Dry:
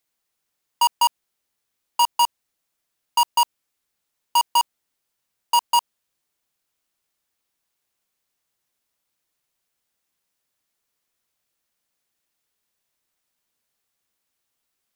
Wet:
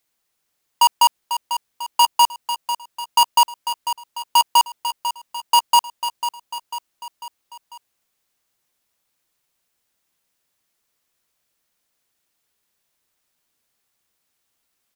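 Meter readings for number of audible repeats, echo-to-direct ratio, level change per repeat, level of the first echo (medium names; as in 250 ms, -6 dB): 4, -8.5 dB, -5.5 dB, -10.0 dB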